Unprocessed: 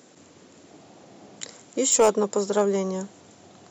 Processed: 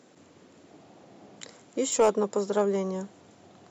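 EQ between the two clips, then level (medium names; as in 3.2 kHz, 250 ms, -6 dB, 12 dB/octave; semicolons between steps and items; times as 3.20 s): treble shelf 6 kHz -11 dB; -3.0 dB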